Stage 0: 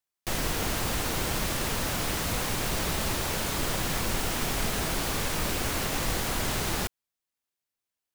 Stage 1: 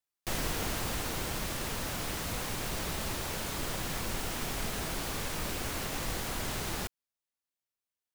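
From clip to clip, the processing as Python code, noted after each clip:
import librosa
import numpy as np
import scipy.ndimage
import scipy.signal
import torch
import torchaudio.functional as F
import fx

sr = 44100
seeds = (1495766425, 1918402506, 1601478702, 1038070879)

y = fx.rider(x, sr, range_db=10, speed_s=2.0)
y = y * 10.0 ** (-6.0 / 20.0)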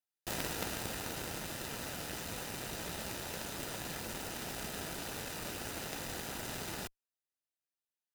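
y = fx.notch_comb(x, sr, f0_hz=1100.0)
y = fx.cheby_harmonics(y, sr, harmonics=(3, 5, 6), levels_db=(-8, -21, -29), full_scale_db=-23.0)
y = y * 10.0 ** (7.0 / 20.0)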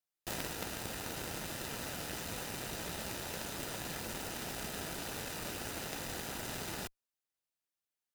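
y = fx.rider(x, sr, range_db=10, speed_s=0.5)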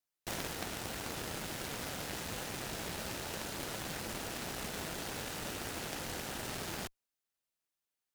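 y = fx.doppler_dist(x, sr, depth_ms=0.66)
y = y * 10.0 ** (1.0 / 20.0)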